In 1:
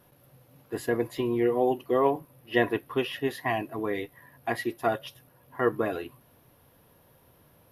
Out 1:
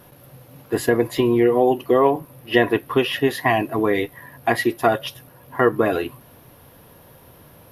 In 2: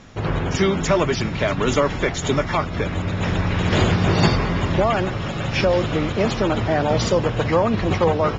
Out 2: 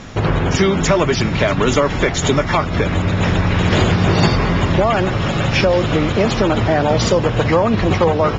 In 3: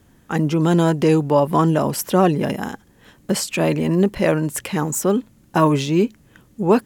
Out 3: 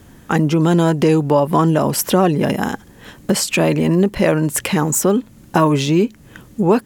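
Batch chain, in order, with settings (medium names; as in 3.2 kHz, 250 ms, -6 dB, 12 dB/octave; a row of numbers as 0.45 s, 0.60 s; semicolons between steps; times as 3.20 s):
compression 2:1, threshold -27 dBFS; peak normalisation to -1.5 dBFS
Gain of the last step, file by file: +12.0 dB, +10.5 dB, +10.0 dB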